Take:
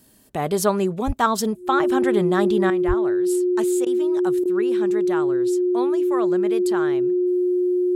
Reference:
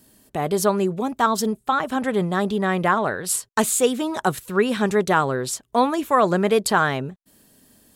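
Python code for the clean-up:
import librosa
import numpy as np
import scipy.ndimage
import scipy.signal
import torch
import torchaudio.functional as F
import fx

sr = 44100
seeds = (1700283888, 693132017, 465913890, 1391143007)

y = fx.notch(x, sr, hz=360.0, q=30.0)
y = fx.fix_deplosive(y, sr, at_s=(1.06, 2.87))
y = fx.fix_interpolate(y, sr, at_s=(3.85, 4.44), length_ms=13.0)
y = fx.gain(y, sr, db=fx.steps((0.0, 0.0), (2.7, 11.0)))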